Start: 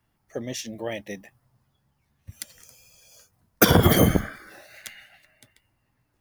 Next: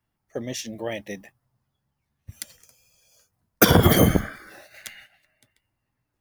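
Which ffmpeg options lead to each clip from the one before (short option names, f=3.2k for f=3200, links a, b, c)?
-af "agate=range=-8dB:threshold=-49dB:ratio=16:detection=peak,volume=1dB"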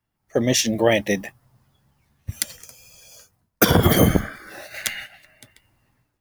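-af "dynaudnorm=f=130:g=5:m=15dB,volume=-1dB"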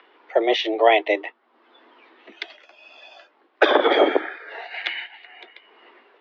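-af "acompressor=mode=upward:threshold=-32dB:ratio=2.5,highpass=f=250:t=q:w=0.5412,highpass=f=250:t=q:w=1.307,lowpass=f=3.5k:t=q:w=0.5176,lowpass=f=3.5k:t=q:w=0.7071,lowpass=f=3.5k:t=q:w=1.932,afreqshift=110,volume=2.5dB"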